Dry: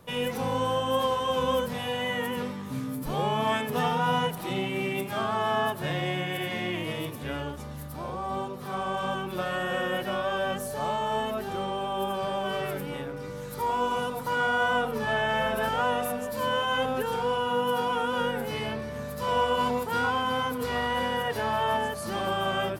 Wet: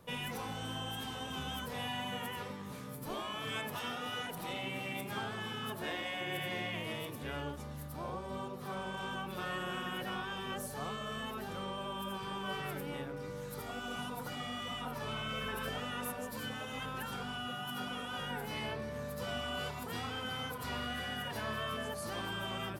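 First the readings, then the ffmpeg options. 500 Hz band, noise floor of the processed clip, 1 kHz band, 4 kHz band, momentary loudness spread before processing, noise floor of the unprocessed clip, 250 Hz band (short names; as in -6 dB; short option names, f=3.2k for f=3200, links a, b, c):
-14.0 dB, -44 dBFS, -13.5 dB, -6.0 dB, 8 LU, -37 dBFS, -9.0 dB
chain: -af "afftfilt=real='re*lt(hypot(re,im),0.158)':imag='im*lt(hypot(re,im),0.158)':win_size=1024:overlap=0.75,volume=-5.5dB"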